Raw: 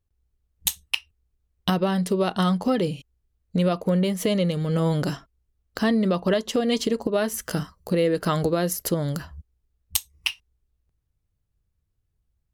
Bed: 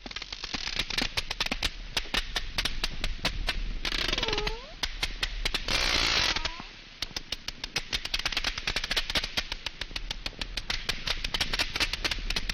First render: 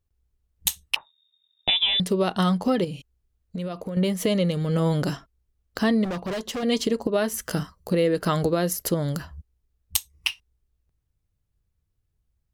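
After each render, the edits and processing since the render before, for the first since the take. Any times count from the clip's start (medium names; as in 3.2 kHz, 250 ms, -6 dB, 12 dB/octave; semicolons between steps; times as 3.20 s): 0.96–2.00 s: frequency inversion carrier 3.7 kHz; 2.84–3.97 s: compression, threshold -28 dBFS; 6.04–6.63 s: overload inside the chain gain 27 dB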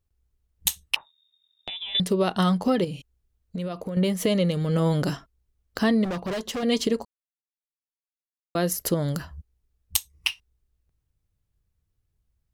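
0.95–1.95 s: compression 3:1, threshold -36 dBFS; 7.05–8.55 s: mute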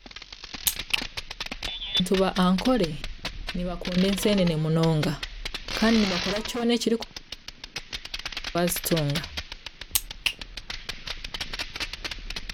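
add bed -4 dB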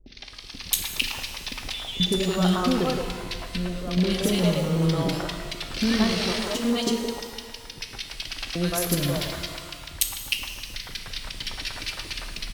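three bands offset in time lows, highs, mids 60/170 ms, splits 480/1700 Hz; pitch-shifted reverb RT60 1.7 s, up +12 st, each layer -8 dB, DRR 5.5 dB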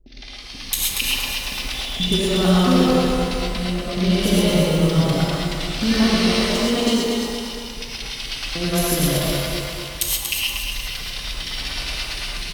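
on a send: feedback delay 236 ms, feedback 46%, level -6 dB; on the sum: gated-style reverb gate 150 ms rising, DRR -3 dB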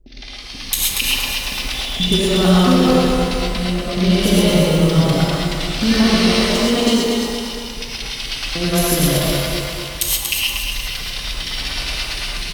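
trim +3.5 dB; peak limiter -3 dBFS, peak gain reduction 2.5 dB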